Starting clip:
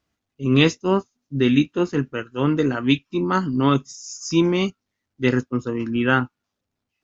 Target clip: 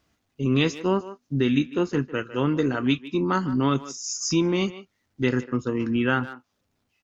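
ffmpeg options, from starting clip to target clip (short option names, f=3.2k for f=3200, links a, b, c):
-filter_complex "[0:a]asplit=2[a][b];[b]adelay=150,highpass=300,lowpass=3.4k,asoftclip=type=hard:threshold=-10.5dB,volume=-17dB[c];[a][c]amix=inputs=2:normalize=0,acompressor=threshold=-35dB:ratio=2,volume=7dB"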